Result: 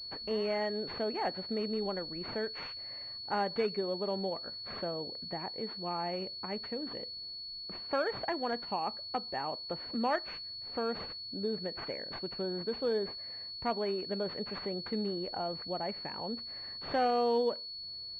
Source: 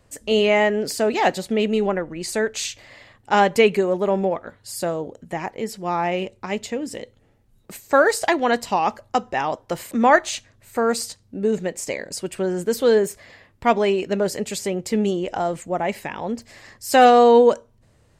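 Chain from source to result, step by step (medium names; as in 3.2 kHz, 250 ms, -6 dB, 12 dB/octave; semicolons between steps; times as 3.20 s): compression 1.5:1, threshold -37 dBFS, peak gain reduction 10.5 dB; class-D stage that switches slowly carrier 4.4 kHz; trim -7 dB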